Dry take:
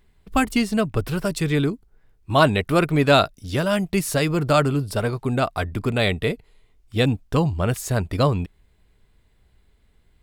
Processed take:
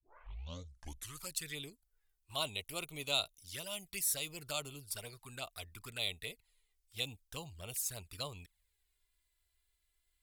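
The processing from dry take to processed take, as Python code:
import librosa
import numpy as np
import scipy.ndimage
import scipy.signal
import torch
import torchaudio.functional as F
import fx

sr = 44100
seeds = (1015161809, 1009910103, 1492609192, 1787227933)

y = fx.tape_start_head(x, sr, length_s=1.39)
y = fx.peak_eq(y, sr, hz=220.0, db=-10.0, octaves=2.1)
y = fx.env_flanger(y, sr, rest_ms=3.1, full_db=-22.0)
y = scipy.signal.lfilter([1.0, -0.9], [1.0], y)
y = F.gain(torch.from_numpy(y), -2.0).numpy()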